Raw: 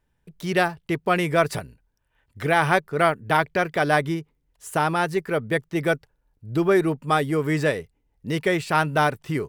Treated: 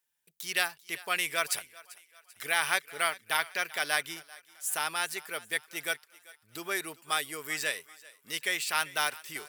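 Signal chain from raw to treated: differentiator; on a send: thinning echo 390 ms, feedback 49%, high-pass 620 Hz, level -18.5 dB; on the sum: dynamic bell 2.6 kHz, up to +4 dB, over -45 dBFS, Q 0.82; trim +4.5 dB

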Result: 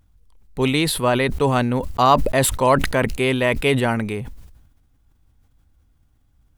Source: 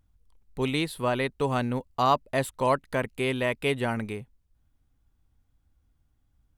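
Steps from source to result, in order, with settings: decay stretcher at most 55 dB/s; trim +7.5 dB

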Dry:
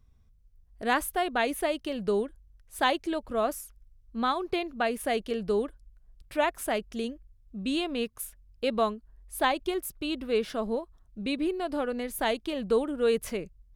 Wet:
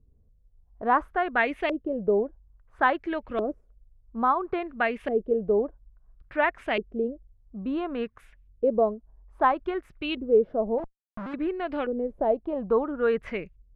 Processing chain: 10.78–11.34 s: Schmitt trigger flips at -42 dBFS; LFO low-pass saw up 0.59 Hz 380–2700 Hz

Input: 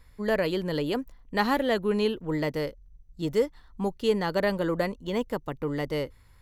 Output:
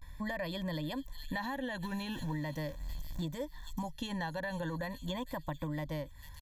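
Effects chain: 1.83–3.24 s: jump at every zero crossing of -42 dBFS; feedback echo behind a high-pass 456 ms, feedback 35%, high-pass 5.5 kHz, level -7 dB; peak limiter -21 dBFS, peak gain reduction 9 dB; rippled EQ curve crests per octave 1.1, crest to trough 8 dB; vibrato 0.4 Hz 65 cents; comb 1.2 ms, depth 88%; compression 6:1, threshold -36 dBFS, peak gain reduction 13.5 dB; trim +1 dB

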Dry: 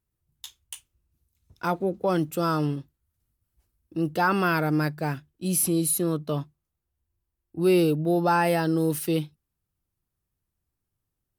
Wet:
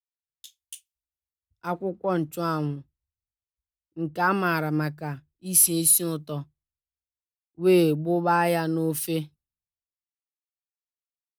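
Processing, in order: three bands expanded up and down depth 100%; trim -2 dB

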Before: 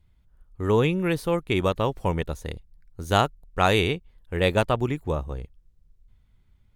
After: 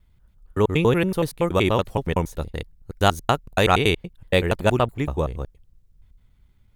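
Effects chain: slices played last to first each 94 ms, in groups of 2; treble shelf 12 kHz +5.5 dB; trim +3 dB

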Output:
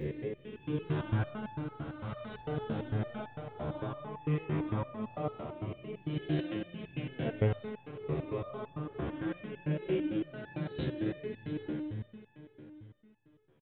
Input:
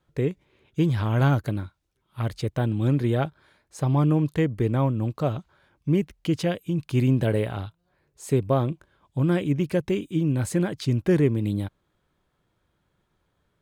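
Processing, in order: reverse spectral sustain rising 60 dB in 1.49 s; compression, threshold -22 dBFS, peak gain reduction 7.5 dB; spring tank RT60 3.8 s, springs 46/56 ms, chirp 40 ms, DRR 2 dB; resampled via 8 kHz; resonator arpeggio 8.9 Hz 75–860 Hz

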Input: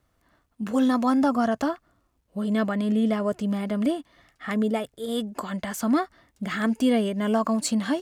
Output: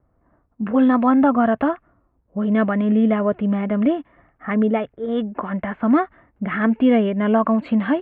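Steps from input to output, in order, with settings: level-controlled noise filter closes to 920 Hz, open at -18 dBFS; inverse Chebyshev low-pass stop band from 5.1 kHz, stop band 40 dB; trim +6 dB

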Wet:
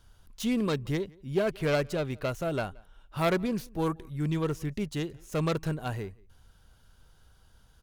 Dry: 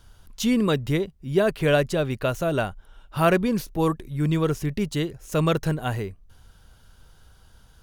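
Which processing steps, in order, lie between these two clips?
self-modulated delay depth 0.14 ms; echo from a far wall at 30 m, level -26 dB; trim -6.5 dB

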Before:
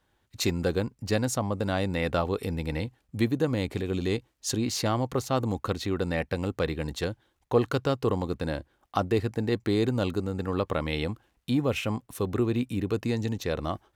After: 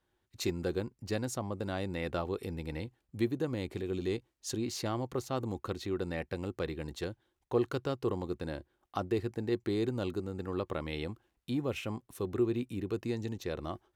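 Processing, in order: peaking EQ 360 Hz +8 dB 0.22 oct; trim -8.5 dB

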